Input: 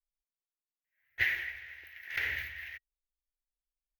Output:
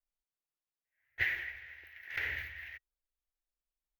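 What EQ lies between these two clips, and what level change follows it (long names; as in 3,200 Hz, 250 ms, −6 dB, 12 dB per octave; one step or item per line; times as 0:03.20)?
parametric band 220 Hz −6.5 dB 0.28 octaves
high-shelf EQ 2,600 Hz −7.5 dB
0.0 dB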